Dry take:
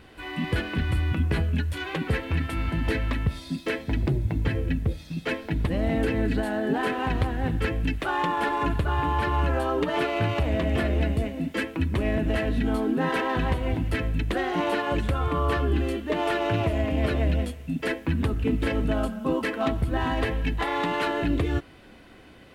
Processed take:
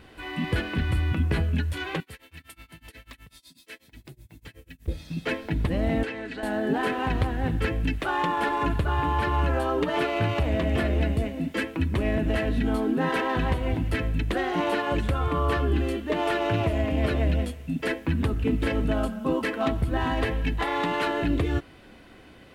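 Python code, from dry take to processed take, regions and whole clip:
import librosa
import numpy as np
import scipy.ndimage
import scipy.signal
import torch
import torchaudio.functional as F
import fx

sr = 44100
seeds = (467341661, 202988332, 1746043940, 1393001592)

y = fx.chain(x, sr, fx.pre_emphasis(coefficient=0.9),
    fx.tremolo(hz=8.1, depth=0.96), at=(2.0, 4.88))
y = fx.chain(y, sr, fx.highpass(hz=1000.0, slope=6),
    fx.air_absorb(metres=59.0), at=(6.03, 6.43))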